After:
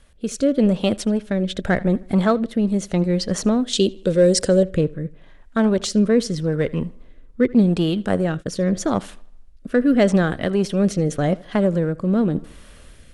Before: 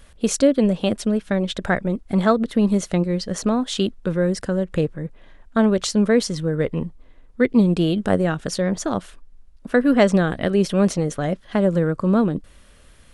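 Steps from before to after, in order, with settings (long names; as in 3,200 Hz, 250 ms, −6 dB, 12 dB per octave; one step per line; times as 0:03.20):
in parallel at −10 dB: hard clipping −20 dBFS, distortion −7 dB
0:03.73–0:04.63: on the sum: graphic EQ with 10 bands 500 Hz +10 dB, 1,000 Hz −8 dB, 4,000 Hz +8 dB, 8,000 Hz +11 dB
tape delay 78 ms, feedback 46%, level −21 dB, low-pass 4,800 Hz
rotating-speaker cabinet horn 0.85 Hz
0:07.54–0:08.56: noise gate −28 dBFS, range −21 dB
automatic gain control gain up to 9 dB
level −4.5 dB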